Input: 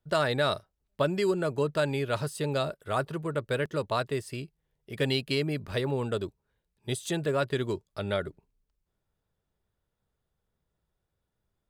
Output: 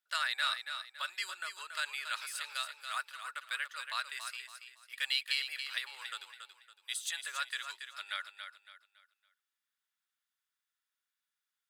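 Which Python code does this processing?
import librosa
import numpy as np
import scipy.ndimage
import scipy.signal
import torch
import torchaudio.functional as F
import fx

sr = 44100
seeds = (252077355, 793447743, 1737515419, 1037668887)

y = scipy.signal.sosfilt(scipy.signal.butter(4, 1400.0, 'highpass', fs=sr, output='sos'), x)
y = fx.echo_feedback(y, sr, ms=280, feedback_pct=33, wet_db=-8.0)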